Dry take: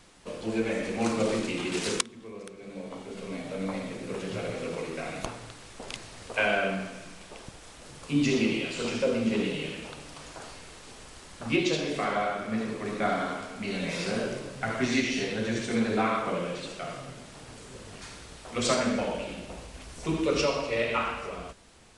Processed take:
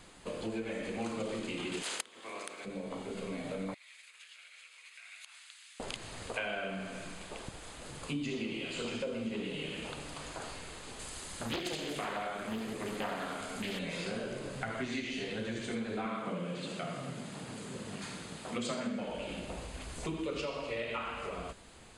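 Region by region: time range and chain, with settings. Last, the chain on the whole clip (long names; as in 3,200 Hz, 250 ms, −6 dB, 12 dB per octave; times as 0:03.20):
0:01.82–0:02.64: ceiling on every frequency bin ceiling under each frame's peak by 19 dB + high-pass filter 350 Hz
0:03.74–0:05.80: downward compressor 10 to 1, threshold −36 dBFS + four-pole ladder high-pass 1,600 Hz, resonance 20%
0:10.99–0:13.79: high-shelf EQ 5,300 Hz +11.5 dB + highs frequency-modulated by the lows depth 0.93 ms
0:16.05–0:19.06: high-pass filter 120 Hz + parametric band 190 Hz +9 dB 0.86 octaves
whole clip: dynamic equaliser 3,100 Hz, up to +4 dB, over −51 dBFS, Q 6.2; downward compressor 4 to 1, threshold −37 dBFS; notch filter 5,600 Hz, Q 5.1; level +1 dB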